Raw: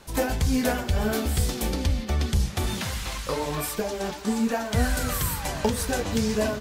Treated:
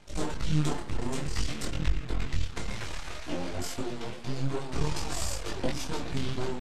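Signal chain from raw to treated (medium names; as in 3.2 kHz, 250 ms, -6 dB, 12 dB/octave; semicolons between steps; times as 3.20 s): half-wave rectifier; pitch shift -9 st; detune thickener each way 19 cents; trim +2 dB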